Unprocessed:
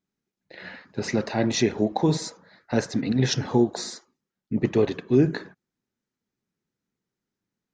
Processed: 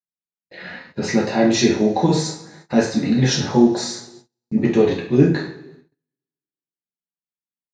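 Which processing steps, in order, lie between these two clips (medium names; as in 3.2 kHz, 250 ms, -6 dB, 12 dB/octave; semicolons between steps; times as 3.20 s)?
two-slope reverb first 0.44 s, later 1.8 s, from -21 dB, DRR -3.5 dB; gate -45 dBFS, range -31 dB; trim +1 dB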